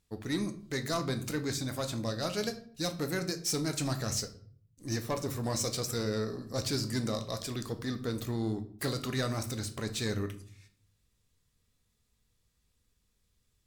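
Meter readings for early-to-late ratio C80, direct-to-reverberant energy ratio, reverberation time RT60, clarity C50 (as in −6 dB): 17.5 dB, 7.0 dB, 0.55 s, 13.5 dB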